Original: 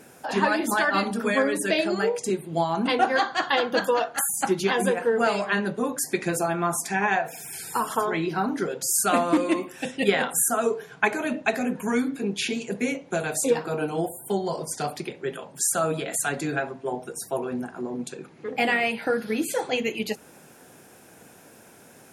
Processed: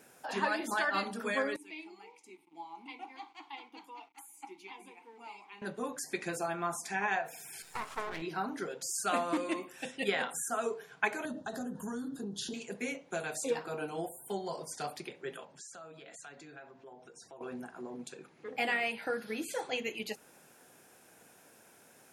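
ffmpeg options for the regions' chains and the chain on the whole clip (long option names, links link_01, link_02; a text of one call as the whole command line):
ffmpeg -i in.wav -filter_complex "[0:a]asettb=1/sr,asplit=3[link_01][link_02][link_03];[link_01]atrim=end=1.564[link_04];[link_02]atrim=start=1.56:end=5.62,asetpts=PTS-STARTPTS,afade=type=in:duration=0.004:curve=qsin,afade=type=out:start_time=4.056:duration=0.004:curve=qsin,aemphasis=mode=production:type=riaa,acrusher=bits=5:mix=0:aa=0.5,asplit=3[link_05][link_06][link_07];[link_05]bandpass=frequency=300:width_type=q:width=8,volume=0dB[link_08];[link_06]bandpass=frequency=870:width_type=q:width=8,volume=-6dB[link_09];[link_07]bandpass=frequency=2240:width_type=q:width=8,volume=-9dB[link_10];[link_08][link_09][link_10]amix=inputs=3:normalize=0[link_11];[link_03]atrim=start=5.616[link_12];[link_04][link_11]acrossfade=duration=0.004:curve1=hsin:curve2=qsin[link_13];[link_13][link_12]acrossfade=duration=0.004:curve1=qsin:curve2=hsin,asettb=1/sr,asplit=3[link_14][link_15][link_16];[link_14]atrim=end=7.624[link_17];[link_15]atrim=start=7.62:end=8.22,asetpts=PTS-STARTPTS,afade=type=in:duration=0.004:curve=qsin,afade=type=out:start_time=0.596:duration=0.004:curve=qsin,lowpass=6500,aeval=exprs='max(val(0),0)':channel_layout=same[link_18];[link_16]atrim=start=8.216[link_19];[link_17][link_18]acrossfade=duration=0.004:curve1=hsin:curve2=qsin[link_20];[link_20][link_19]acrossfade=duration=0.004:curve1=qsin:curve2=hsin,asettb=1/sr,asplit=3[link_21][link_22][link_23];[link_21]atrim=end=11.254[link_24];[link_22]atrim=start=11.25:end=12.54,asetpts=PTS-STARTPTS,afade=type=in:duration=0.004:curve=qsin,afade=type=out:start_time=1.286:duration=0.004:curve=qsin,bass=frequency=250:gain=11,treble=frequency=4000:gain=2,acompressor=threshold=-23dB:ratio=5:attack=3.2:release=140:knee=1:detection=peak,asuperstop=centerf=2300:order=4:qfactor=1.3[link_25];[link_23]atrim=start=12.536[link_26];[link_24][link_25]acrossfade=duration=0.004:curve1=hsin:curve2=qsin[link_27];[link_27][link_26]acrossfade=duration=0.004:curve1=qsin:curve2=hsin,asettb=1/sr,asplit=3[link_28][link_29][link_30];[link_28]atrim=end=15.454[link_31];[link_29]atrim=start=15.45:end=17.41,asetpts=PTS-STARTPTS,afade=type=in:duration=0.004:curve=qsin,afade=type=out:start_time=1.956:duration=0.004:curve=qsin,lowpass=frequency=6800:width=0.5412,lowpass=frequency=6800:width=1.3066,acompressor=threshold=-42dB:ratio=3:attack=3.2:release=140:knee=1:detection=peak[link_32];[link_30]atrim=start=17.406[link_33];[link_31][link_32]acrossfade=duration=0.004:curve1=hsin:curve2=qsin[link_34];[link_34][link_33]acrossfade=duration=0.004:curve1=qsin:curve2=hsin,lowshelf=frequency=400:gain=-7.5,acrossover=split=7700[link_35][link_36];[link_36]acompressor=threshold=-40dB:ratio=4:attack=1:release=60[link_37];[link_35][link_37]amix=inputs=2:normalize=0,volume=-7.5dB" out.wav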